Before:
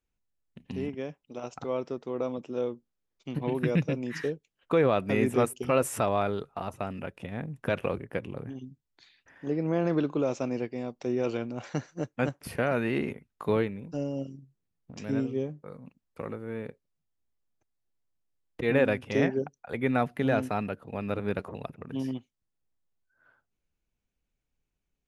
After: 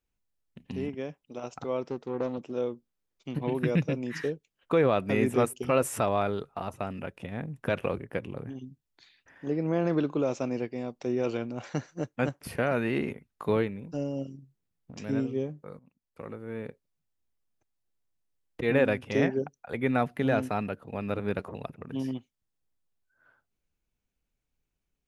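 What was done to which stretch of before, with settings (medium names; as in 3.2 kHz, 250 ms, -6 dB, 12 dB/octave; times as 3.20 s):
1.82–2.52 s: loudspeaker Doppler distortion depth 0.19 ms
15.79–16.65 s: fade in linear, from -16 dB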